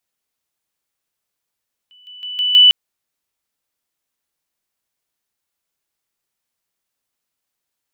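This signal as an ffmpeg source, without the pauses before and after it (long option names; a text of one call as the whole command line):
ffmpeg -f lavfi -i "aevalsrc='pow(10,(-45+10*floor(t/0.16))/20)*sin(2*PI*2980*t)':duration=0.8:sample_rate=44100" out.wav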